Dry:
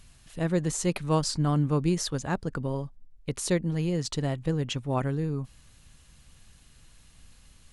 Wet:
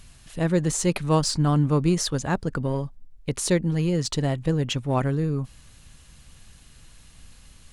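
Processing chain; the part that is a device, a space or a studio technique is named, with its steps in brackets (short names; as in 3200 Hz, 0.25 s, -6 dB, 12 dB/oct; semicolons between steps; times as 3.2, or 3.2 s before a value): parallel distortion (in parallel at -12.5 dB: hard clip -31 dBFS, distortion -5 dB); on the sum: gain +3.5 dB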